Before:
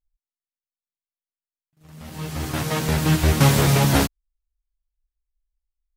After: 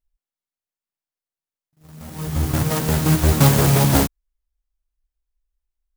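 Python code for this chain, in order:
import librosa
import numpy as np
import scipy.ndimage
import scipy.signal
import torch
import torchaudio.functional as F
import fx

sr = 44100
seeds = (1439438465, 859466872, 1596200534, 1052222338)

y = fx.low_shelf(x, sr, hz=150.0, db=9.5, at=(2.27, 2.72))
y = fx.clock_jitter(y, sr, seeds[0], jitter_ms=0.1)
y = F.gain(torch.from_numpy(y), 2.0).numpy()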